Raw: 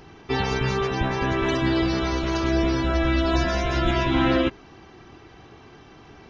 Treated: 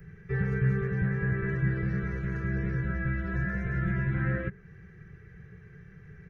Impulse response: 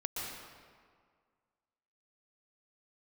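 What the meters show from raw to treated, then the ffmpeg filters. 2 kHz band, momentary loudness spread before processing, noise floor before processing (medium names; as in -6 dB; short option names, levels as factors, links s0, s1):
-5.5 dB, 4 LU, -48 dBFS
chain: -filter_complex "[0:a]firequalizer=gain_entry='entry(100,0);entry(180,6);entry(260,-28);entry(430,-7);entry(660,-25);entry(950,-27);entry(1700,0);entry(3000,-25);entry(4600,-27);entry(9400,-3)':delay=0.05:min_phase=1,acrossover=split=100|1100|1900[s0][s1][s2][s3];[s0]acompressor=threshold=0.00891:ratio=6[s4];[s3]alimiter=level_in=26.6:limit=0.0631:level=0:latency=1:release=237,volume=0.0376[s5];[s4][s1][s2][s5]amix=inputs=4:normalize=0,volume=1.19"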